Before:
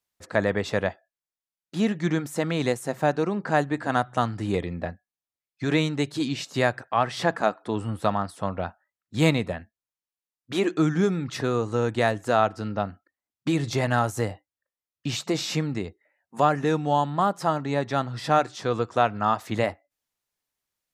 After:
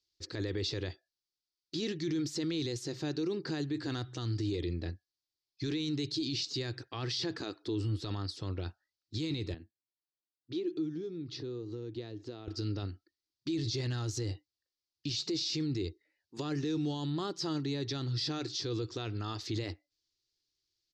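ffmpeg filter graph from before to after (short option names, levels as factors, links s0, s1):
-filter_complex "[0:a]asettb=1/sr,asplit=3[s0][s1][s2];[s0]atrim=end=9.544[s3];[s1]atrim=start=9.54:end=12.48,asetpts=PTS-STARTPTS,afade=t=in:d=0.004:c=qsin,afade=t=out:st=2.936:d=0.004:c=qsin,equalizer=f=1800:t=o:w=1.9:g=-9,acompressor=threshold=0.0158:ratio=3:attack=3.2:release=140:knee=1:detection=peak,highpass=140,lowpass=3000[s4];[s2]atrim=start=12.476[s5];[s3][s4]acrossfade=d=0.004:c1=hsin:c2=qsin[s6];[s6][s5]acrossfade=d=0.004:c1=qsin:c2=hsin,firequalizer=gain_entry='entry(120,0);entry(200,-15);entry(330,4);entry(610,-20);entry(4600,10);entry(9500,-19)':delay=0.05:min_phase=1,alimiter=level_in=1.58:limit=0.0631:level=0:latency=1:release=20,volume=0.631,volume=1.19"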